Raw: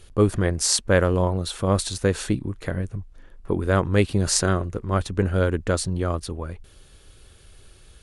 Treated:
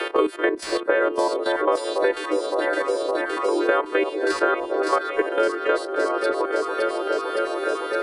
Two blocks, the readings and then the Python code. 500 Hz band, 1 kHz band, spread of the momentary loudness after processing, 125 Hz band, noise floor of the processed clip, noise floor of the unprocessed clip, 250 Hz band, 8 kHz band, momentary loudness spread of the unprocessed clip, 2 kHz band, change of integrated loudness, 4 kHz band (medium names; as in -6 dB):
+5.0 dB, +7.0 dB, 4 LU, under -35 dB, -33 dBFS, -51 dBFS, -2.0 dB, -14.0 dB, 10 LU, +6.0 dB, +0.5 dB, -3.0 dB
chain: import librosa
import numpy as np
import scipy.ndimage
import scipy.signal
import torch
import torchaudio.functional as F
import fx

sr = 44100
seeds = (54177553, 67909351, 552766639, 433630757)

y = fx.freq_snap(x, sr, grid_st=2)
y = scipy.signal.sosfilt(scipy.signal.butter(16, 310.0, 'highpass', fs=sr, output='sos'), y)
y = fx.high_shelf(y, sr, hz=5100.0, db=3.5)
y = fx.level_steps(y, sr, step_db=12)
y = 10.0 ** (-4.0 / 20.0) * np.tanh(y / 10.0 ** (-4.0 / 20.0))
y = fx.air_absorb(y, sr, metres=490.0)
y = fx.echo_alternate(y, sr, ms=282, hz=1000.0, feedback_pct=80, wet_db=-7.5)
y = fx.band_squash(y, sr, depth_pct=100)
y = y * librosa.db_to_amplitude(8.5)